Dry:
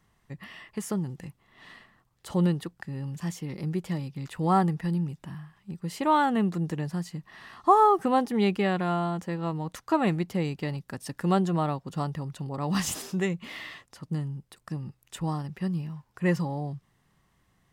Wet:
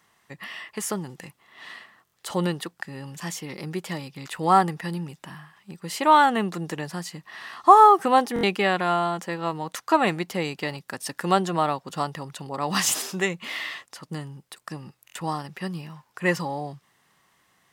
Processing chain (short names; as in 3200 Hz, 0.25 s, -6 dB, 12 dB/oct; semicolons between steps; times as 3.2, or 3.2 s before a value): HPF 730 Hz 6 dB/oct; stuck buffer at 2.04/8.34/15.06, samples 1024, times 3; gain +9 dB